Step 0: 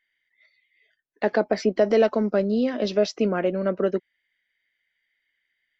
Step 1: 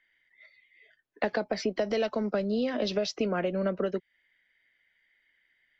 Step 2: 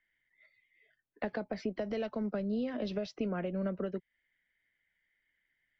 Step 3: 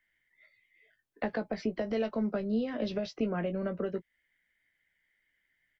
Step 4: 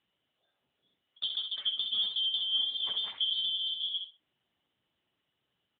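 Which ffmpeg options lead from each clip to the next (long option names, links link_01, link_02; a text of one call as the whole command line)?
ffmpeg -i in.wav -filter_complex "[0:a]acrossover=split=440|2400[link_01][link_02][link_03];[link_01]acompressor=threshold=-32dB:ratio=6[link_04];[link_04][link_02][link_03]amix=inputs=3:normalize=0,aemphasis=mode=reproduction:type=75fm,acrossover=split=170|3000[link_05][link_06][link_07];[link_06]acompressor=threshold=-35dB:ratio=6[link_08];[link_05][link_08][link_07]amix=inputs=3:normalize=0,volume=7dB" out.wav
ffmpeg -i in.wav -af "bass=frequency=250:gain=8,treble=frequency=4000:gain=-9,volume=-8.5dB" out.wav
ffmpeg -i in.wav -filter_complex "[0:a]asplit=2[link_01][link_02];[link_02]adelay=18,volume=-8dB[link_03];[link_01][link_03]amix=inputs=2:normalize=0,volume=2.5dB" out.wav
ffmpeg -i in.wav -filter_complex "[0:a]afftfilt=real='real(if(lt(b,272),68*(eq(floor(b/68),0)*2+eq(floor(b/68),1)*3+eq(floor(b/68),2)*0+eq(floor(b/68),3)*1)+mod(b,68),b),0)':imag='imag(if(lt(b,272),68*(eq(floor(b/68),0)*2+eq(floor(b/68),1)*3+eq(floor(b/68),2)*0+eq(floor(b/68),3)*1)+mod(b,68),b),0)':win_size=2048:overlap=0.75,asplit=2[link_01][link_02];[link_02]aecho=0:1:65|130|195:0.501|0.105|0.0221[link_03];[link_01][link_03]amix=inputs=2:normalize=0" -ar 8000 -c:a libopencore_amrnb -b:a 10200 out.amr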